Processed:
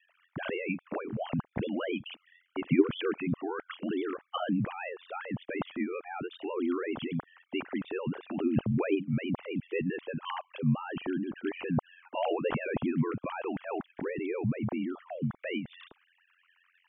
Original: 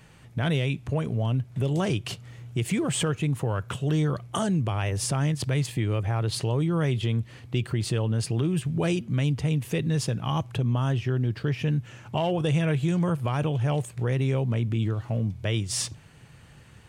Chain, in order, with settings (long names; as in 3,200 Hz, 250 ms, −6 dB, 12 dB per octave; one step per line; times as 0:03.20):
three sine waves on the formant tracks
ring modulation 44 Hz
level −4 dB